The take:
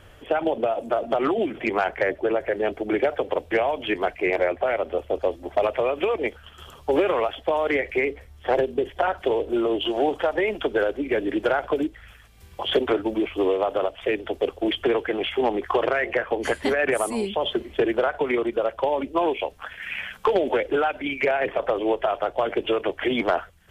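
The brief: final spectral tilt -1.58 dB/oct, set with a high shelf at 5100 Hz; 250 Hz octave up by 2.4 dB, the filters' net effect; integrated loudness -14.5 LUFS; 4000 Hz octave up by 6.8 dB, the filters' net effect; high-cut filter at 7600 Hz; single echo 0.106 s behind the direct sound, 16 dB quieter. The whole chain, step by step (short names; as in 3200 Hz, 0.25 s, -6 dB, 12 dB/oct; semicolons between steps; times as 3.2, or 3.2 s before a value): LPF 7600 Hz; bell 250 Hz +3.5 dB; bell 4000 Hz +7 dB; high shelf 5100 Hz +7.5 dB; echo 0.106 s -16 dB; gain +8.5 dB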